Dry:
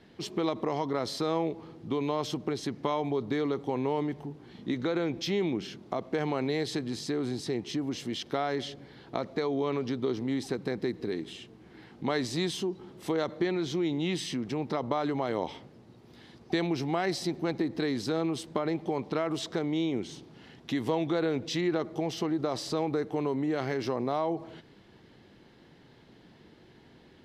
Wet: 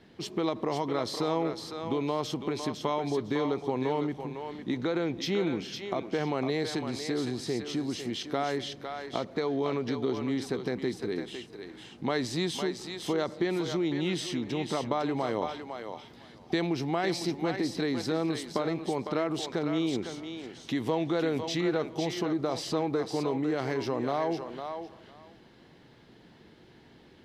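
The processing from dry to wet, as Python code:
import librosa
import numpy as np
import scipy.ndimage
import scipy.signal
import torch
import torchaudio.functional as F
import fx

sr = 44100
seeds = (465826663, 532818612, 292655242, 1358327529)

y = fx.echo_thinned(x, sr, ms=505, feedback_pct=18, hz=580.0, wet_db=-5.0)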